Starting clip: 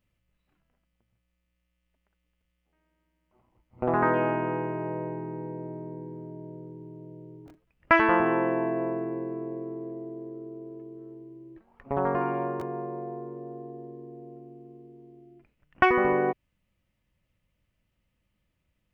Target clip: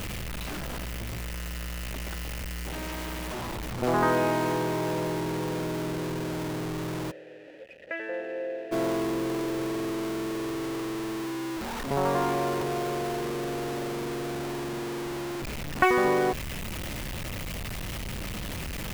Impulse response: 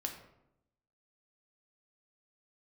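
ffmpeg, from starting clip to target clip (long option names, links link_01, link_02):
-filter_complex "[0:a]aeval=exprs='val(0)+0.5*0.0501*sgn(val(0))':channel_layout=same,asplit=3[link_01][link_02][link_03];[link_01]afade=type=out:start_time=7.1:duration=0.02[link_04];[link_02]asplit=3[link_05][link_06][link_07];[link_05]bandpass=frequency=530:width_type=q:width=8,volume=0dB[link_08];[link_06]bandpass=frequency=1840:width_type=q:width=8,volume=-6dB[link_09];[link_07]bandpass=frequency=2480:width_type=q:width=8,volume=-9dB[link_10];[link_08][link_09][link_10]amix=inputs=3:normalize=0,afade=type=in:start_time=7.1:duration=0.02,afade=type=out:start_time=8.71:duration=0.02[link_11];[link_03]afade=type=in:start_time=8.71:duration=0.02[link_12];[link_04][link_11][link_12]amix=inputs=3:normalize=0,volume=-2dB"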